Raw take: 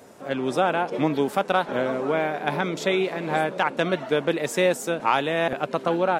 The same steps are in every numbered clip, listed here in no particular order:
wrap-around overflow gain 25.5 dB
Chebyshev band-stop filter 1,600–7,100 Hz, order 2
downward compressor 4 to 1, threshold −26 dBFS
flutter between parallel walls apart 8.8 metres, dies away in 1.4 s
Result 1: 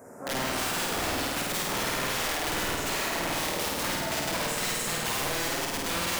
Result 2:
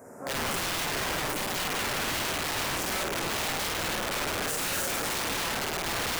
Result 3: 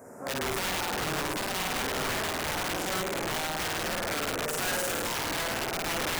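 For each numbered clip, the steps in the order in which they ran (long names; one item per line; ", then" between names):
Chebyshev band-stop filter, then wrap-around overflow, then flutter between parallel walls, then downward compressor
Chebyshev band-stop filter, then downward compressor, then flutter between parallel walls, then wrap-around overflow
flutter between parallel walls, then downward compressor, then Chebyshev band-stop filter, then wrap-around overflow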